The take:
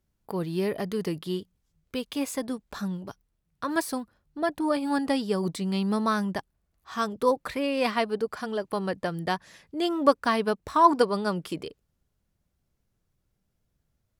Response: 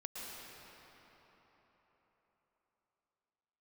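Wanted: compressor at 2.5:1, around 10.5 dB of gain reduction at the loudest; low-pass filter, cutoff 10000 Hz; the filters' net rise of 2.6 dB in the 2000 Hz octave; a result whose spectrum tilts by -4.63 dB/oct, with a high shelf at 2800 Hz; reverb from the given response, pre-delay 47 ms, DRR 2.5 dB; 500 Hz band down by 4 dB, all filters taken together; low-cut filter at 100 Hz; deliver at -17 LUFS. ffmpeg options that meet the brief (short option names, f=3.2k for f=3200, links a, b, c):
-filter_complex "[0:a]highpass=100,lowpass=10k,equalizer=f=500:t=o:g=-5,equalizer=f=2k:t=o:g=6.5,highshelf=f=2.8k:g=-7.5,acompressor=threshold=-30dB:ratio=2.5,asplit=2[a][b];[1:a]atrim=start_sample=2205,adelay=47[c];[b][c]afir=irnorm=-1:irlink=0,volume=-2dB[d];[a][d]amix=inputs=2:normalize=0,volume=15.5dB"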